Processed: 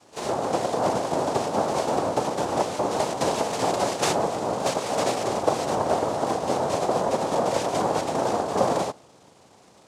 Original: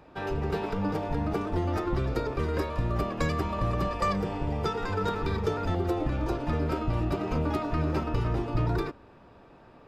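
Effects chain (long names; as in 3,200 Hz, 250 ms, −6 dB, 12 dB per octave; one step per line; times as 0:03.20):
cochlear-implant simulation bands 2
dynamic equaliser 640 Hz, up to +8 dB, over −43 dBFS, Q 0.83
on a send: backwards echo 38 ms −15 dB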